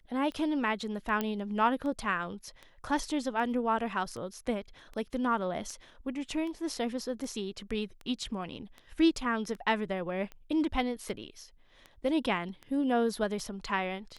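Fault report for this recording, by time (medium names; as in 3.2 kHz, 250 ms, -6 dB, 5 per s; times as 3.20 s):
tick 78 rpm -30 dBFS
1.21 s: pop -17 dBFS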